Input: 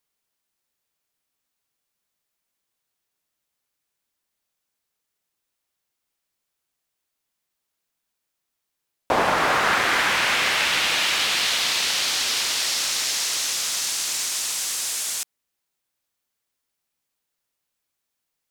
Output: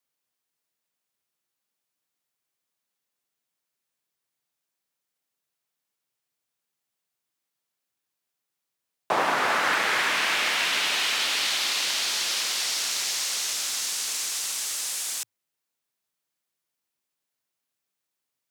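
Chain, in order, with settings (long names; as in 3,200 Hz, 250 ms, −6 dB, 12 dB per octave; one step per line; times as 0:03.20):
frequency shifter +99 Hz
level −3.5 dB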